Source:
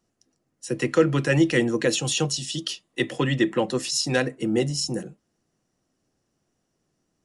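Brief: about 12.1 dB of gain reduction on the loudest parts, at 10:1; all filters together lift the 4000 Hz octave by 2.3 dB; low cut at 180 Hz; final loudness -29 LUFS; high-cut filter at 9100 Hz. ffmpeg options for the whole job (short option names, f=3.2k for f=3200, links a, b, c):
-af "highpass=180,lowpass=9.1k,equalizer=f=4k:t=o:g=3.5,acompressor=threshold=-26dB:ratio=10,volume=1.5dB"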